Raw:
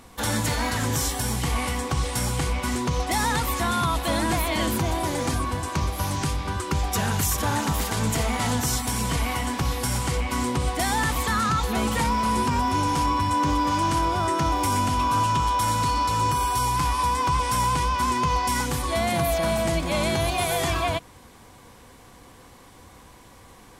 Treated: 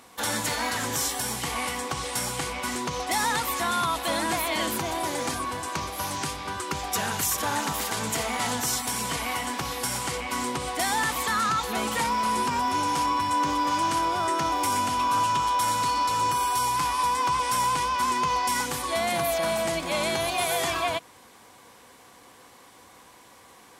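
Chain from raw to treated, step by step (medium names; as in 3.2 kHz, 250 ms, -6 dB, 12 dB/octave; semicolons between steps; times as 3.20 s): high-pass 450 Hz 6 dB/octave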